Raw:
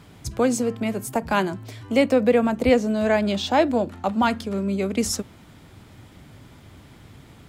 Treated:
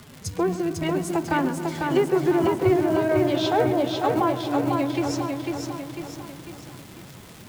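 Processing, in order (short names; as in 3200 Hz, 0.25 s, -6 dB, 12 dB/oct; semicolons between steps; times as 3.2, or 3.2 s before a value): treble ducked by the level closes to 1200 Hz, closed at -15 dBFS; high shelf 9300 Hz +5.5 dB; in parallel at -1 dB: compressor 6:1, threshold -28 dBFS, peak gain reduction 15 dB; on the sum: resonator 180 Hz, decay 0.16 s, harmonics all, mix 50%; companded quantiser 8-bit; formant-preserving pitch shift +6.5 st; crackle 200/s -33 dBFS; on a send: darkening echo 0.131 s, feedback 75%, low-pass 3600 Hz, level -14 dB; on the sum: lo-fi delay 0.498 s, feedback 55%, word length 8-bit, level -3.5 dB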